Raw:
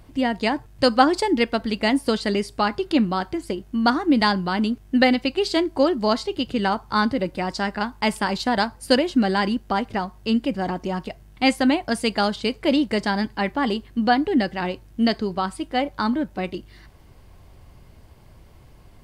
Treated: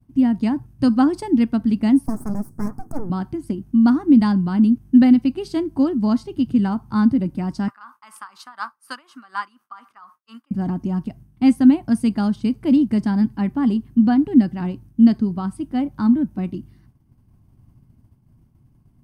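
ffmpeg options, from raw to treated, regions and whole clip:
ffmpeg -i in.wav -filter_complex "[0:a]asettb=1/sr,asplit=3[link_01][link_02][link_03];[link_01]atrim=end=2.064[link_04];[link_02]atrim=start=2.06:end=3.1,asetpts=PTS-STARTPTS,afade=type=in:duration=0.004:curve=qsin,afade=type=out:start_time=1.036:duration=0.004:curve=qsin,aeval=exprs='abs(val(0))':channel_layout=same,asuperstop=centerf=3100:order=4:qfactor=0.62[link_05];[link_03]atrim=start=3.096[link_06];[link_04][link_05]acrossfade=duration=0.004:curve1=hsin:curve2=qsin[link_07];[link_07][link_06]acrossfade=duration=0.004:curve1=qsin:curve2=hsin,asettb=1/sr,asplit=3[link_08][link_09][link_10];[link_08]atrim=end=7.684[link_11];[link_09]atrim=start=7.68:end=10.51,asetpts=PTS-STARTPTS,afade=type=in:duration=0.004:curve=qsin,afade=type=out:start_time=2.826:duration=0.004:curve=qsin,highpass=frequency=1200:width_type=q:width=7,aeval=exprs='val(0)*pow(10,-18*(0.5-0.5*cos(2*PI*4.1*n/s))/20)':channel_layout=same[link_12];[link_10]atrim=start=10.506[link_13];[link_11][link_12]acrossfade=duration=0.004:curve1=hsin:curve2=qsin[link_14];[link_14][link_13]acrossfade=duration=0.004:curve1=qsin:curve2=hsin,bandreject=frequency=7300:width=6.7,agate=range=-33dB:threshold=-40dB:ratio=3:detection=peak,equalizer=frequency=125:width_type=o:width=1:gain=11,equalizer=frequency=250:width_type=o:width=1:gain=12,equalizer=frequency=500:width_type=o:width=1:gain=-11,equalizer=frequency=2000:width_type=o:width=1:gain=-7,equalizer=frequency=4000:width_type=o:width=1:gain=-10,volume=-3.5dB" out.wav

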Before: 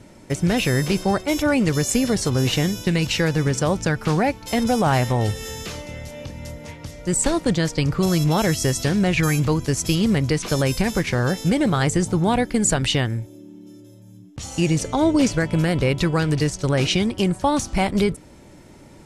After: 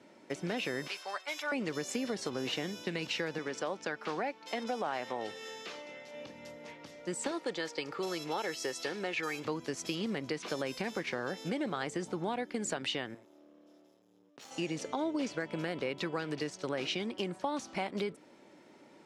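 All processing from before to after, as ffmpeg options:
ffmpeg -i in.wav -filter_complex "[0:a]asettb=1/sr,asplit=3[link_01][link_02][link_03];[link_01]atrim=end=0.874[link_04];[link_02]atrim=start=0.87:end=1.52,asetpts=PTS-STARTPTS,afade=type=in:duration=0.004:curve=qsin,afade=type=out:start_time=0.646:duration=0.004:curve=qsin,highpass=1100,aecho=1:1:6.9:0.37,atrim=end_sample=28665[link_05];[link_03]atrim=start=1.516[link_06];[link_04][link_05]acrossfade=duration=0.004:curve1=hsin:curve2=qsin[link_07];[link_07][link_06]acrossfade=duration=0.004:curve1=qsin:curve2=hsin,asettb=1/sr,asplit=3[link_08][link_09][link_10];[link_08]atrim=end=3.384[link_11];[link_09]atrim=start=3.38:end=6.14,asetpts=PTS-STARTPTS,afade=type=in:duration=0.004:curve=qsin,afade=type=out:start_time=2.756:duration=0.004:curve=qsin,highpass=frequency=340:poles=1,highshelf=frequency=11000:gain=-11[link_12];[link_10]atrim=start=6.136[link_13];[link_11][link_12]acrossfade=duration=0.004:curve1=hsin:curve2=qsin[link_14];[link_14][link_13]acrossfade=duration=0.004:curve1=qsin:curve2=hsin,asettb=1/sr,asplit=3[link_15][link_16][link_17];[link_15]atrim=end=7.314[link_18];[link_16]atrim=start=7.31:end=9.45,asetpts=PTS-STARTPTS,afade=type=in:duration=0.004:curve=qsin,afade=type=out:start_time=2.136:duration=0.004:curve=qsin,highpass=frequency=370:poles=1,aecho=1:1:2.3:0.36,atrim=end_sample=94374[link_19];[link_17]atrim=start=9.446[link_20];[link_18][link_19]acrossfade=duration=0.004:curve1=hsin:curve2=qsin[link_21];[link_21][link_20]acrossfade=duration=0.004:curve1=qsin:curve2=hsin,asettb=1/sr,asplit=3[link_22][link_23][link_24];[link_22]atrim=end=13.144[link_25];[link_23]atrim=start=13.14:end=14.51,asetpts=PTS-STARTPTS,afade=type=in:duration=0.004:curve=qsin,afade=type=out:start_time=1.366:duration=0.004:curve=qsin,lowshelf=frequency=130:gain=-11.5,aeval=exprs='max(val(0),0)':channel_layout=same[link_26];[link_24]atrim=start=14.506[link_27];[link_25][link_26]acrossfade=duration=0.004:curve1=hsin:curve2=qsin[link_28];[link_28][link_27]acrossfade=duration=0.004:curve1=qsin:curve2=hsin,highpass=frequency=150:poles=1,acrossover=split=200 5300:gain=0.0794 1 0.224[link_29][link_30][link_31];[link_29][link_30][link_31]amix=inputs=3:normalize=0,acompressor=threshold=-24dB:ratio=3,volume=-8dB" out.wav

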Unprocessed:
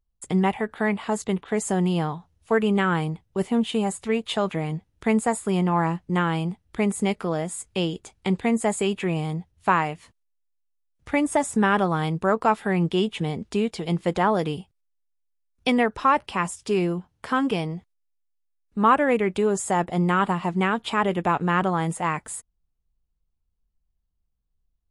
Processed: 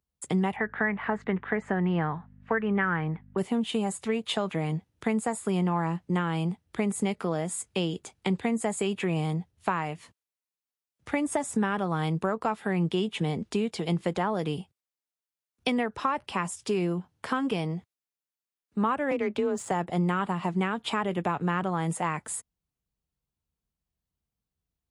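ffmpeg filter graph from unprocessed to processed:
ffmpeg -i in.wav -filter_complex "[0:a]asettb=1/sr,asplit=3[link_01][link_02][link_03];[link_01]atrim=end=0.564[link_04];[link_02]atrim=start=0.56:end=3.38,asetpts=PTS-STARTPTS,afade=type=in:duration=0.004:curve=qsin,afade=type=out:start_time=2.816:duration=0.004:curve=qsin,lowpass=frequency=1800:width_type=q:width=3.3,aeval=exprs='val(0)+0.00447*(sin(2*PI*50*n/s)+sin(2*PI*2*50*n/s)/2+sin(2*PI*3*50*n/s)/3+sin(2*PI*4*50*n/s)/4+sin(2*PI*5*50*n/s)/5)':channel_layout=same[link_05];[link_03]atrim=start=3.376[link_06];[link_04][link_05]acrossfade=duration=0.004:curve1=hsin:curve2=qsin[link_07];[link_07][link_06]acrossfade=duration=0.004:curve1=qsin:curve2=hsin,asettb=1/sr,asplit=3[link_08][link_09][link_10];[link_08]atrim=end=19.114[link_11];[link_09]atrim=start=19.11:end=19.71,asetpts=PTS-STARTPTS,afade=type=in:duration=0.004:curve=qsin,afade=type=out:start_time=0.596:duration=0.004:curve=qsin,adynamicsmooth=sensitivity=3.5:basefreq=4000,afreqshift=30[link_12];[link_10]atrim=start=19.706[link_13];[link_11][link_12]acrossfade=duration=0.004:curve1=hsin:curve2=qsin[link_14];[link_14][link_13]acrossfade=duration=0.004:curve1=qsin:curve2=hsin,highpass=93,acrossover=split=130[link_15][link_16];[link_16]acompressor=threshold=-25dB:ratio=4[link_17];[link_15][link_17]amix=inputs=2:normalize=0" out.wav

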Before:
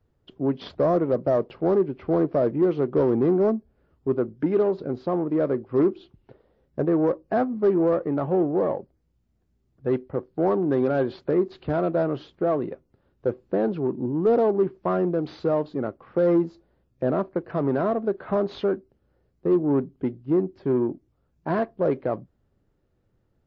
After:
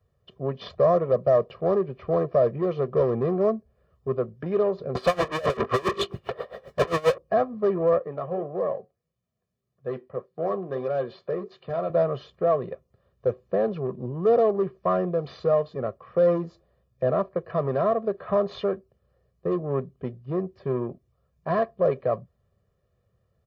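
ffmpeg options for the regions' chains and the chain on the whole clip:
ffmpeg -i in.wav -filter_complex "[0:a]asettb=1/sr,asplit=3[link_01][link_02][link_03];[link_01]atrim=end=4.954[link_04];[link_02]atrim=start=4.95:end=7.18,asetpts=PTS-STARTPTS,afade=type=in:duration=0.004:curve=qsin,afade=type=out:start_time=2.226:duration=0.004:curve=qsin,bandreject=frequency=50:width_type=h:width=6,bandreject=frequency=100:width_type=h:width=6,bandreject=frequency=150:width_type=h:width=6,bandreject=frequency=200:width_type=h:width=6,bandreject=frequency=250:width_type=h:width=6,bandreject=frequency=300:width_type=h:width=6,bandreject=frequency=350:width_type=h:width=6,bandreject=frequency=400:width_type=h:width=6,bandreject=frequency=450:width_type=h:width=6,asplit=2[link_05][link_06];[link_06]highpass=frequency=720:poles=1,volume=43dB,asoftclip=type=tanh:threshold=-11dB[link_07];[link_05][link_07]amix=inputs=2:normalize=0,lowpass=frequency=2700:poles=1,volume=-6dB,aeval=exprs='val(0)*pow(10,-23*(0.5-0.5*cos(2*PI*7.5*n/s))/20)':channel_layout=same[link_08];[link_03]atrim=start=7.176[link_09];[link_04][link_08]acrossfade=duration=0.004:curve1=hsin:curve2=qsin[link_10];[link_10][link_09]acrossfade=duration=0.004:curve1=qsin:curve2=hsin,asettb=1/sr,asplit=3[link_11][link_12][link_13];[link_11]atrim=end=7.984[link_14];[link_12]atrim=start=7.98:end=11.9,asetpts=PTS-STARTPTS,afade=type=in:duration=0.004:curve=qsin,afade=type=out:start_time=3.916:duration=0.004:curve=qsin,highpass=150,flanger=delay=5.4:depth=4.8:regen=-67:speed=1.7:shape=sinusoidal[link_15];[link_13]atrim=start=11.896[link_16];[link_14][link_15]acrossfade=duration=0.004:curve1=hsin:curve2=qsin[link_17];[link_17][link_16]acrossfade=duration=0.004:curve1=qsin:curve2=hsin,highpass=58,equalizer=frequency=1000:width_type=o:width=0.29:gain=4,aecho=1:1:1.7:0.87,volume=-2.5dB" out.wav

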